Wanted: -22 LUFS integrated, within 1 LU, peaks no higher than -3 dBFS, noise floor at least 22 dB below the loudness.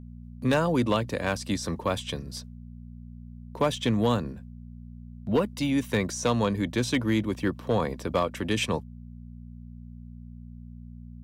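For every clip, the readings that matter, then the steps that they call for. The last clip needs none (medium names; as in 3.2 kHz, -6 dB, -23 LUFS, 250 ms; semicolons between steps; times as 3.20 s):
clipped samples 0.3%; clipping level -16.0 dBFS; hum 60 Hz; highest harmonic 240 Hz; hum level -41 dBFS; loudness -27.5 LUFS; peak level -16.0 dBFS; loudness target -22.0 LUFS
-> clip repair -16 dBFS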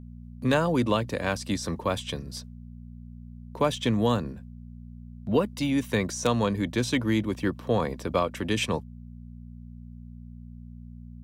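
clipped samples 0.0%; hum 60 Hz; highest harmonic 240 Hz; hum level -41 dBFS
-> de-hum 60 Hz, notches 4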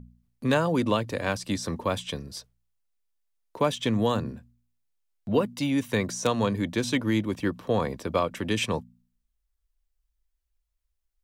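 hum not found; loudness -27.5 LUFS; peak level -10.0 dBFS; loudness target -22.0 LUFS
-> trim +5.5 dB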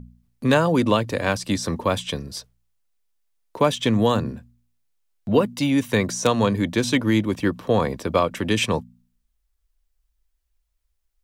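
loudness -22.0 LUFS; peak level -4.5 dBFS; noise floor -73 dBFS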